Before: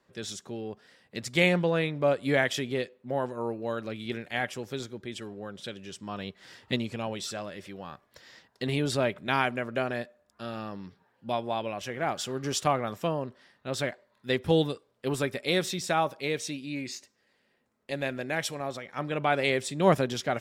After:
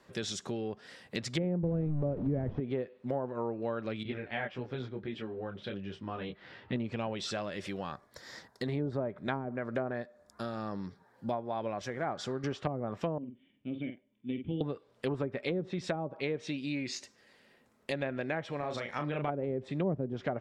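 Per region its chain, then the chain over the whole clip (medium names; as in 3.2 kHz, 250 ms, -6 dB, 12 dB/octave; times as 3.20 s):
1.63–2.60 s: one-bit delta coder 32 kbps, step -27 dBFS + bass shelf 160 Hz +11.5 dB
4.03–6.76 s: distance through air 350 m + detune thickener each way 10 cents
7.92–12.44 s: peaking EQ 2.8 kHz -13 dB 0.47 oct + tremolo 2.1 Hz, depth 38%
13.18–14.61 s: de-esser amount 85% + cascade formant filter i + doubling 48 ms -7.5 dB
18.59–19.29 s: compression 2:1, threshold -32 dBFS + doubling 34 ms -5 dB
whole clip: low-pass that closes with the level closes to 410 Hz, closed at -22.5 dBFS; compression 2.5:1, threshold -43 dBFS; trim +7.5 dB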